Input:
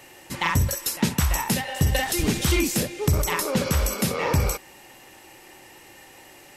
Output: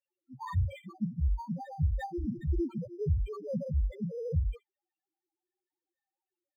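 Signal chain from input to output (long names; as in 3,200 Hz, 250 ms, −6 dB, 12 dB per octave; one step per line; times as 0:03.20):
noise reduction from a noise print of the clip's start 30 dB
spectral peaks only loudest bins 1
linearly interpolated sample-rate reduction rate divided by 8×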